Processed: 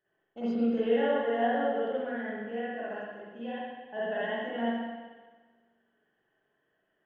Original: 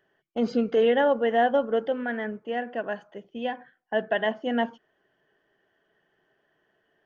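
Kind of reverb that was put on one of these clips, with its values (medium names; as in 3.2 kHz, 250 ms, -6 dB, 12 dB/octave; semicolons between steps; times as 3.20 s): spring tank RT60 1.4 s, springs 43/60 ms, chirp 60 ms, DRR -9.5 dB; trim -15.5 dB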